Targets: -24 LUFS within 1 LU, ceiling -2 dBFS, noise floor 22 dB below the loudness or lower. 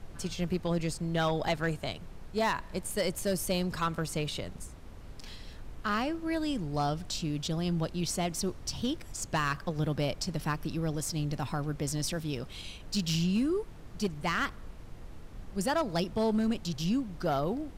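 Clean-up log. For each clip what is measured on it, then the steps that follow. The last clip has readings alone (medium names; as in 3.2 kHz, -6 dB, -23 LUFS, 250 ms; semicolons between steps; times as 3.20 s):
clipped samples 0.7%; clipping level -22.5 dBFS; noise floor -47 dBFS; noise floor target -55 dBFS; loudness -32.5 LUFS; peak level -22.5 dBFS; loudness target -24.0 LUFS
-> clip repair -22.5 dBFS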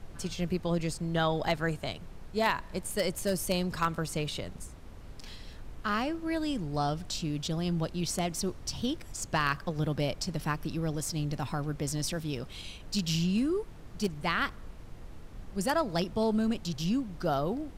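clipped samples 0.0%; noise floor -47 dBFS; noise floor target -54 dBFS
-> noise print and reduce 7 dB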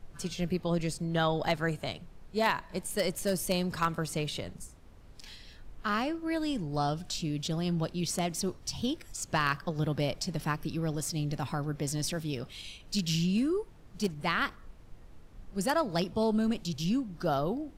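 noise floor -52 dBFS; noise floor target -54 dBFS
-> noise print and reduce 6 dB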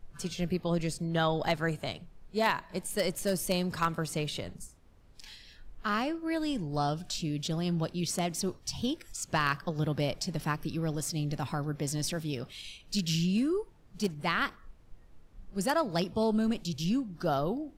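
noise floor -57 dBFS; loudness -32.0 LUFS; peak level -13.5 dBFS; loudness target -24.0 LUFS
-> trim +8 dB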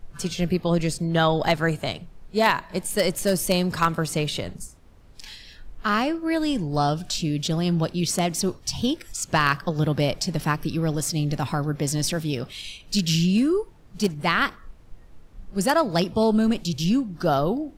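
loudness -24.0 LUFS; peak level -5.5 dBFS; noise floor -49 dBFS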